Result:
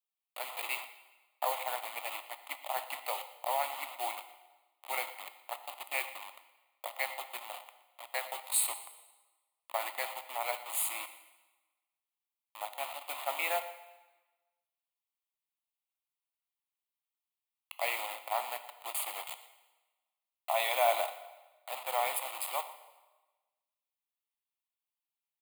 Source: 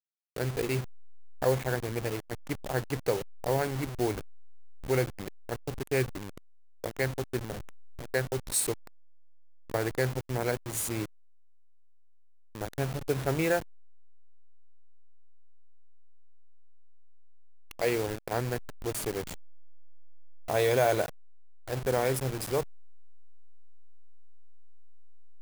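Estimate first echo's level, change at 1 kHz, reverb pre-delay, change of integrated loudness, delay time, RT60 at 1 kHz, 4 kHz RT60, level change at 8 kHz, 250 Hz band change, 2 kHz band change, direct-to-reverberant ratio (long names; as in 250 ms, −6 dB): −18.5 dB, +2.0 dB, 7 ms, −4.0 dB, 119 ms, 1.2 s, 1.1 s, −1.5 dB, −29.5 dB, −2.0 dB, 10.0 dB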